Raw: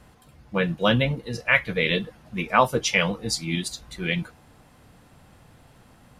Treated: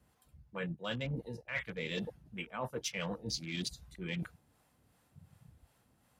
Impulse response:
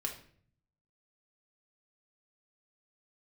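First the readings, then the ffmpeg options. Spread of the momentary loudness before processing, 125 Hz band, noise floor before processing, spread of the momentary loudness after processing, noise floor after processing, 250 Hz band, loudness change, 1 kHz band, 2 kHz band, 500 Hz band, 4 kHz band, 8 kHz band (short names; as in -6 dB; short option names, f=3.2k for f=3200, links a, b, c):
10 LU, -13.0 dB, -55 dBFS, 7 LU, -72 dBFS, -13.5 dB, -15.5 dB, -20.5 dB, -17.5 dB, -16.0 dB, -13.5 dB, -12.0 dB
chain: -filter_complex "[0:a]highpass=f=40:w=0.5412,highpass=f=40:w=1.3066,afwtdn=0.0178,acrossover=split=480[a][b];[a]aeval=exprs='val(0)*(1-0.5/2+0.5/2*cos(2*PI*2.7*n/s))':c=same[c];[b]aeval=exprs='val(0)*(1-0.5/2-0.5/2*cos(2*PI*2.7*n/s))':c=same[d];[c][d]amix=inputs=2:normalize=0,areverse,acompressor=threshold=-37dB:ratio=8,areverse,highshelf=f=8.1k:g=10.5,volume=1dB"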